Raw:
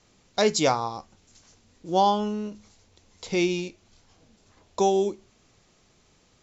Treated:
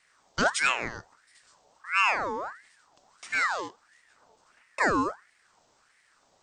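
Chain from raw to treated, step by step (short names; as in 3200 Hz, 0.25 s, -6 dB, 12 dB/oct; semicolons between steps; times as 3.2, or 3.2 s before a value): bell 2100 Hz -7.5 dB 1.1 oct; ring modulator with a swept carrier 1300 Hz, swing 50%, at 1.5 Hz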